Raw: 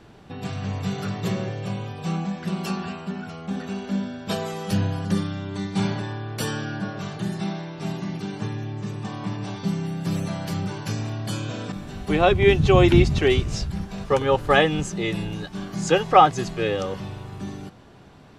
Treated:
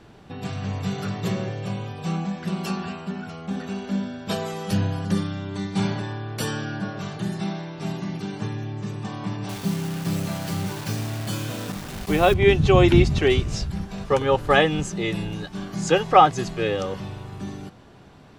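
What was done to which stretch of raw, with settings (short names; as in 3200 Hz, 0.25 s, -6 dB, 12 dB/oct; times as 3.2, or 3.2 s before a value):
9.49–12.34 requantised 6-bit, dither none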